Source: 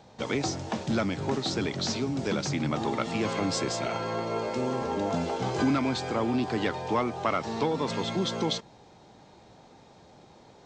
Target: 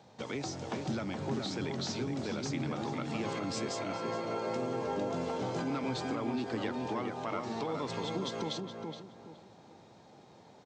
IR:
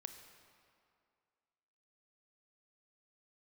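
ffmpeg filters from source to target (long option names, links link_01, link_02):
-filter_complex "[0:a]highpass=frequency=87:width=0.5412,highpass=frequency=87:width=1.3066,alimiter=limit=-22.5dB:level=0:latency=1:release=203,asplit=2[link_01][link_02];[link_02]adelay=420,lowpass=frequency=1700:poles=1,volume=-3.5dB,asplit=2[link_03][link_04];[link_04]adelay=420,lowpass=frequency=1700:poles=1,volume=0.31,asplit=2[link_05][link_06];[link_06]adelay=420,lowpass=frequency=1700:poles=1,volume=0.31,asplit=2[link_07][link_08];[link_08]adelay=420,lowpass=frequency=1700:poles=1,volume=0.31[link_09];[link_03][link_05][link_07][link_09]amix=inputs=4:normalize=0[link_10];[link_01][link_10]amix=inputs=2:normalize=0,volume=-4.5dB"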